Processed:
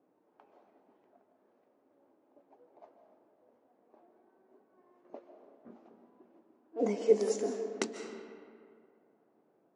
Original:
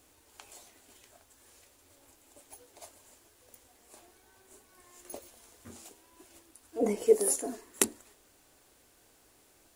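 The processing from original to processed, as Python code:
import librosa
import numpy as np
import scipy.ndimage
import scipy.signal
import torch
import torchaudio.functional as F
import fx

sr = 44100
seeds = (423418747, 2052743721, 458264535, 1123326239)

y = scipy.signal.sosfilt(scipy.signal.ellip(3, 1.0, 40, [170.0, 6000.0], 'bandpass', fs=sr, output='sos'), x)
y = fx.env_lowpass(y, sr, base_hz=670.0, full_db=-29.5)
y = fx.rev_freeverb(y, sr, rt60_s=2.2, hf_ratio=0.55, predelay_ms=105, drr_db=6.5)
y = y * librosa.db_to_amplitude(-1.5)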